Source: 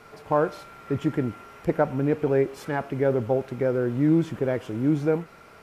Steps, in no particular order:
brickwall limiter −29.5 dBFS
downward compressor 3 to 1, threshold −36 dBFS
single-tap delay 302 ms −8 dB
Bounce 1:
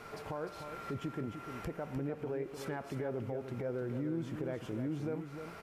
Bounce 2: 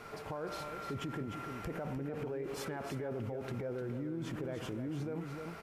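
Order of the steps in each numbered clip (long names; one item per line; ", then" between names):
downward compressor, then brickwall limiter, then single-tap delay
brickwall limiter, then single-tap delay, then downward compressor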